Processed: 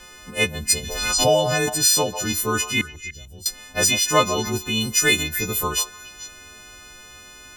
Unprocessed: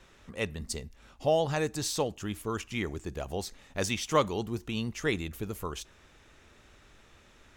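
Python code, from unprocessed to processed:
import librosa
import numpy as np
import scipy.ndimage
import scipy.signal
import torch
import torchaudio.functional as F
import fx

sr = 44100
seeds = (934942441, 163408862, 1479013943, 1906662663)

p1 = fx.freq_snap(x, sr, grid_st=3)
p2 = fx.high_shelf(p1, sr, hz=3400.0, db=11.0, at=(4.8, 5.22), fade=0.02)
p3 = fx.rider(p2, sr, range_db=4, speed_s=0.5)
p4 = p2 + (p3 * librosa.db_to_amplitude(0.0))
p5 = fx.tone_stack(p4, sr, knobs='10-0-1', at=(2.81, 3.46))
p6 = p5 + fx.echo_stepped(p5, sr, ms=147, hz=750.0, octaves=1.4, feedback_pct=70, wet_db=-7.5, dry=0)
p7 = fx.pre_swell(p6, sr, db_per_s=37.0, at=(0.82, 1.68), fade=0.02)
y = p7 * librosa.db_to_amplitude(1.5)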